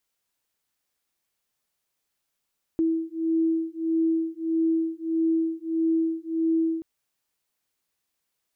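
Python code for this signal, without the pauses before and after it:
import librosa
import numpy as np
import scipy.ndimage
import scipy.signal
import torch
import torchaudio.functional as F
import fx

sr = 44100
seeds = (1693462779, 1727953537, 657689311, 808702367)

y = fx.two_tone_beats(sr, length_s=4.03, hz=325.0, beat_hz=1.6, level_db=-25.0)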